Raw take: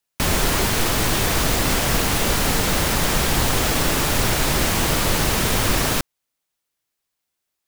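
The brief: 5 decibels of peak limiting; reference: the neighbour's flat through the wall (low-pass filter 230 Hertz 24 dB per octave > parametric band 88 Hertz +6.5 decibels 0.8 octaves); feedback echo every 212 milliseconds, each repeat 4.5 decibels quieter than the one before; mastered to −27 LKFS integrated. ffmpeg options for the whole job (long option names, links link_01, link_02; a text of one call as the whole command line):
ffmpeg -i in.wav -af "alimiter=limit=-11dB:level=0:latency=1,lowpass=frequency=230:width=0.5412,lowpass=frequency=230:width=1.3066,equalizer=frequency=88:width_type=o:width=0.8:gain=6.5,aecho=1:1:212|424|636|848|1060|1272|1484|1696|1908:0.596|0.357|0.214|0.129|0.0772|0.0463|0.0278|0.0167|0.01,volume=-2.5dB" out.wav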